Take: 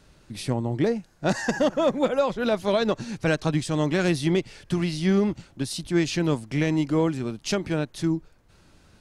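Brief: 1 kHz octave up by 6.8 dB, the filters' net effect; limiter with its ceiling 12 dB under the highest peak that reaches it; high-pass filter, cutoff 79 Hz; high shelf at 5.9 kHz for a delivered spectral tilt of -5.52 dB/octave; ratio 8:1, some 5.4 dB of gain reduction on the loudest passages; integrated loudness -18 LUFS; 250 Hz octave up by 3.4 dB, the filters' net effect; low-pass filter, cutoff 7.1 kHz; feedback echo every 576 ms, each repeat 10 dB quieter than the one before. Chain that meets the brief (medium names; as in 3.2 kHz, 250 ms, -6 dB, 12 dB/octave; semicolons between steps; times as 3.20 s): high-pass 79 Hz; low-pass 7.1 kHz; peaking EQ 250 Hz +4.5 dB; peaking EQ 1 kHz +8.5 dB; treble shelf 5.9 kHz -6 dB; compression 8:1, threshold -19 dBFS; peak limiter -21 dBFS; feedback delay 576 ms, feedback 32%, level -10 dB; trim +12.5 dB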